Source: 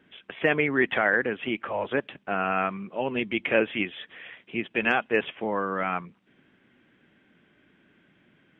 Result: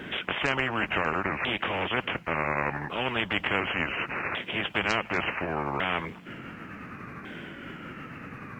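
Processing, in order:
pitch shifter swept by a sawtooth −5.5 semitones, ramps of 1,450 ms
every bin compressed towards the loudest bin 4 to 1

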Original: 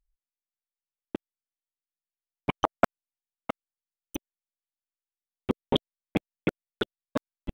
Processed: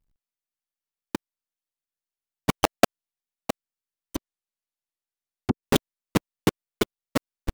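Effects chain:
each half-wave held at its own peak
0:04.16–0:05.63: treble cut that deepens with the level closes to 310 Hz, closed at −21 dBFS

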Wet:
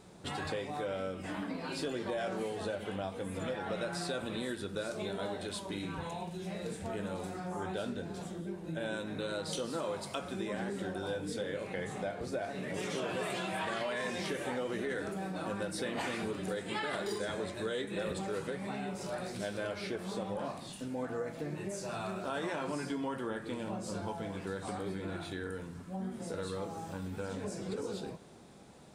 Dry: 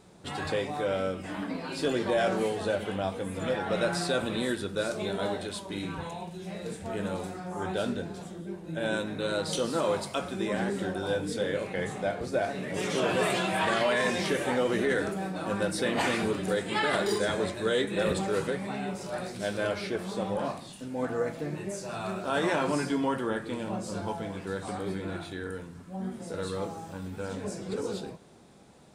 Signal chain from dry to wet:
downward compressor 3 to 1, threshold −36 dBFS, peak gain reduction 10.5 dB

